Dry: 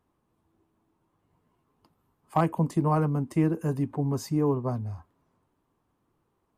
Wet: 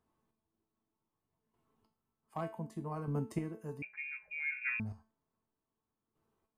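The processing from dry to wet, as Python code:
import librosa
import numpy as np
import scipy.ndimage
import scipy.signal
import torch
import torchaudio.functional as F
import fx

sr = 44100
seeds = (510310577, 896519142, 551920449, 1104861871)

y = fx.chopper(x, sr, hz=0.65, depth_pct=65, duty_pct=20)
y = fx.comb_fb(y, sr, f0_hz=220.0, decay_s=0.37, harmonics='all', damping=0.0, mix_pct=80)
y = fx.freq_invert(y, sr, carrier_hz=2600, at=(3.82, 4.8))
y = F.gain(torch.from_numpy(y), 4.5).numpy()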